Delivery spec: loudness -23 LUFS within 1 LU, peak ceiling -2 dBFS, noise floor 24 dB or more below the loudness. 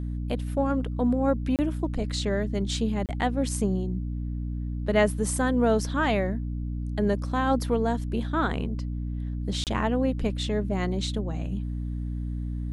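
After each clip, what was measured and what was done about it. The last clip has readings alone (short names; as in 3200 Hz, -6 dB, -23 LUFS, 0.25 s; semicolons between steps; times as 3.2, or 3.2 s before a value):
dropouts 3; longest dropout 28 ms; hum 60 Hz; harmonics up to 300 Hz; hum level -28 dBFS; loudness -27.5 LUFS; peak -8.0 dBFS; loudness target -23.0 LUFS
-> interpolate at 1.56/3.06/9.64, 28 ms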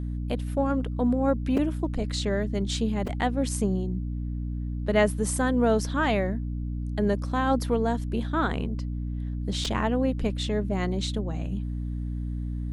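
dropouts 0; hum 60 Hz; harmonics up to 300 Hz; hum level -28 dBFS
-> notches 60/120/180/240/300 Hz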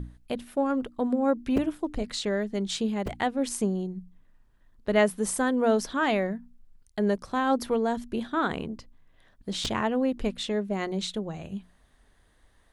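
hum none; loudness -28.0 LUFS; peak -9.0 dBFS; loudness target -23.0 LUFS
-> gain +5 dB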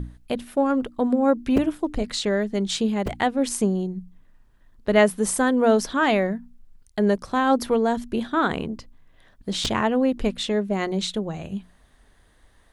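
loudness -23.0 LUFS; peak -4.0 dBFS; noise floor -58 dBFS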